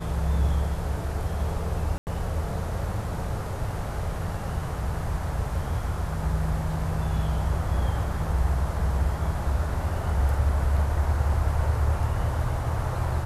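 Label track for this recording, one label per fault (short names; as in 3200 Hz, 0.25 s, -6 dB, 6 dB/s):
1.980000	2.070000	gap 89 ms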